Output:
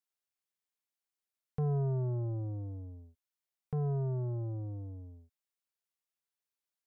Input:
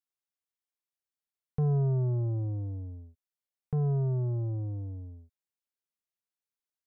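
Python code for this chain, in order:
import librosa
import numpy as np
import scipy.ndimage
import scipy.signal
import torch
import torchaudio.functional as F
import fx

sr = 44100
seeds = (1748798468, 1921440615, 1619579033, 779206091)

y = fx.low_shelf(x, sr, hz=330.0, db=-6.0)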